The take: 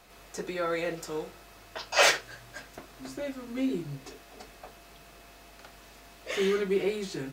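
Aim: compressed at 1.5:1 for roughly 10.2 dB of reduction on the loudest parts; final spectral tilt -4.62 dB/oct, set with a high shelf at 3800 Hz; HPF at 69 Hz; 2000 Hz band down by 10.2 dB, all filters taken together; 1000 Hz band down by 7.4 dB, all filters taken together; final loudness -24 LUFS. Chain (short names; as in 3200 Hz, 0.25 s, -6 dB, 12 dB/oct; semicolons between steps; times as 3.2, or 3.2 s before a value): HPF 69 Hz; bell 1000 Hz -7.5 dB; bell 2000 Hz -8.5 dB; high shelf 3800 Hz -8.5 dB; compressor 1.5:1, threshold -52 dBFS; gain +18.5 dB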